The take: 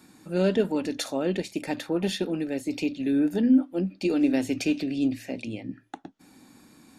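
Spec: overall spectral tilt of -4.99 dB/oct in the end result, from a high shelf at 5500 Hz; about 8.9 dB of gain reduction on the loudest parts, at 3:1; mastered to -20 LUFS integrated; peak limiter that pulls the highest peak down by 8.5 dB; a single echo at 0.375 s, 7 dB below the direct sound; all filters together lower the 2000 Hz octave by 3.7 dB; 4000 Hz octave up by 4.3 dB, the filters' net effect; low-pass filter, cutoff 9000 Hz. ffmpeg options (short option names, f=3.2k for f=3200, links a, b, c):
-af "lowpass=9k,equalizer=f=2k:t=o:g=-8.5,equalizer=f=4k:t=o:g=5.5,highshelf=f=5.5k:g=5.5,acompressor=threshold=-27dB:ratio=3,alimiter=level_in=2dB:limit=-24dB:level=0:latency=1,volume=-2dB,aecho=1:1:375:0.447,volume=14dB"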